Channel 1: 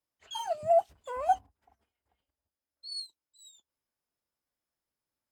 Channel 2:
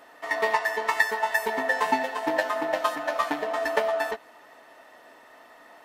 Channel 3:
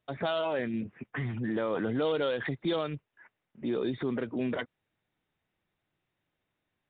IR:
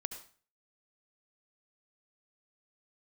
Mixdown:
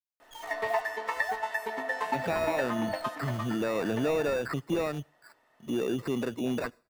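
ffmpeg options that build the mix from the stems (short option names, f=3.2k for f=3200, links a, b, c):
-filter_complex "[0:a]acrusher=bits=7:dc=4:mix=0:aa=0.000001,volume=-9dB[a];[1:a]adelay=200,volume=-7dB,afade=t=out:st=2.94:d=0.64:silence=0.354813[b];[2:a]acrusher=samples=14:mix=1:aa=0.000001,adelay=2050,volume=0.5dB,asplit=2[c][d];[d]volume=-21.5dB[e];[3:a]atrim=start_sample=2205[f];[e][f]afir=irnorm=-1:irlink=0[g];[a][b][c][g]amix=inputs=4:normalize=0,acrossover=split=3100[h][i];[i]acompressor=threshold=-45dB:ratio=4:attack=1:release=60[j];[h][j]amix=inputs=2:normalize=0"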